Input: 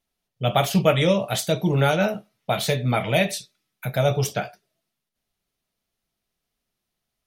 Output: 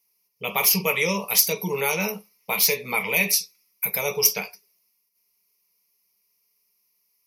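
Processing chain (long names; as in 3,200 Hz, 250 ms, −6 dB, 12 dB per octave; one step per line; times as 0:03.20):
EQ curve with evenly spaced ripples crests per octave 0.83, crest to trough 16 dB
in parallel at +0.5 dB: brickwall limiter −12 dBFS, peak gain reduction 9.5 dB
on the sum: RIAA equalisation recording
level −9 dB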